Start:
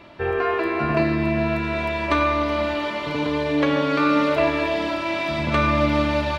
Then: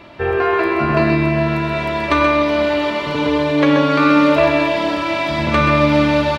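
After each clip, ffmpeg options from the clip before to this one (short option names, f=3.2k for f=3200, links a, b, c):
-af "aecho=1:1:129:0.473,volume=5dB"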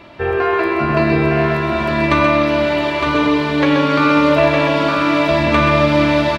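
-af "aecho=1:1:910:0.631"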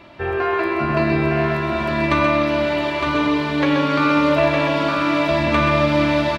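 -af "bandreject=f=460:w=12,volume=-3.5dB"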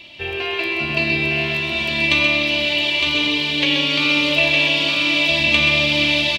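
-af "highshelf=f=2k:t=q:w=3:g=12.5,volume=-5.5dB"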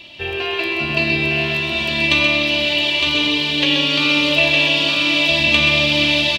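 -af "bandreject=f=2.2k:w=8,volume=2dB"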